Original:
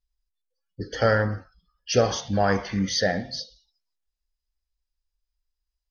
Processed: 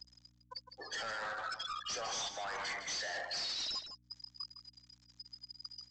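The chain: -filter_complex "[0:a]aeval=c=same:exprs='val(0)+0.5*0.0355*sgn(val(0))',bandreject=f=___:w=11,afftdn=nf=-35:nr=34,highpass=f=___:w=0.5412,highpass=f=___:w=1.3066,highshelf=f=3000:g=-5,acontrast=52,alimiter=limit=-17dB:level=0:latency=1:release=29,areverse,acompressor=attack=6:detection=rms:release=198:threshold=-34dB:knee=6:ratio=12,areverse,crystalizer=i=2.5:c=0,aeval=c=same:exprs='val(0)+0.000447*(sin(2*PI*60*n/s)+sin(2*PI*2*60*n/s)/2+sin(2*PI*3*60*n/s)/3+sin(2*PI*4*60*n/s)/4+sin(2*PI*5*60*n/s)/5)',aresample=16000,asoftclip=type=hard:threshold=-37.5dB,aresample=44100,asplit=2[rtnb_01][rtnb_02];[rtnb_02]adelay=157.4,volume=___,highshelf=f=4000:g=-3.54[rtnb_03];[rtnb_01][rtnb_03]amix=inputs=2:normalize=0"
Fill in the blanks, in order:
2700, 760, 760, -8dB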